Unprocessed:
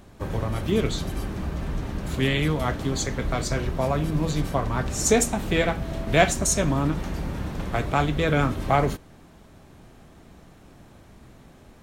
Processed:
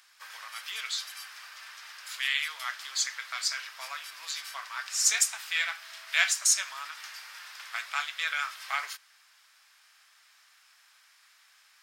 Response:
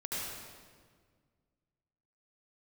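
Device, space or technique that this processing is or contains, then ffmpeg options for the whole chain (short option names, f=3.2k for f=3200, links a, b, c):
headphones lying on a table: -af "highpass=f=1.4k:w=0.5412,highpass=f=1.4k:w=1.3066,equalizer=f=5k:t=o:w=0.23:g=9.5"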